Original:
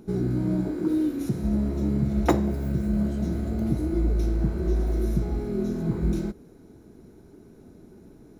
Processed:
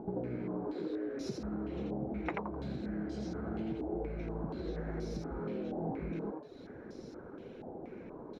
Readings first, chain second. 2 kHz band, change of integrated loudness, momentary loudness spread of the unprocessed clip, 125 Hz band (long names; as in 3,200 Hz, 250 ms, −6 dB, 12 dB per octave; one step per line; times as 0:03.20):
−5.5 dB, −13.5 dB, 4 LU, −16.0 dB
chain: reverb reduction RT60 0.53 s
low-shelf EQ 100 Hz −10 dB
downward compressor 10 to 1, threshold −40 dBFS, peak gain reduction 23.5 dB
on a send: echo with shifted repeats 85 ms, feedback 32%, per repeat +110 Hz, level −3 dB
on the sum: low-pass on a step sequencer 4.2 Hz 790–5,100 Hz
level +2.5 dB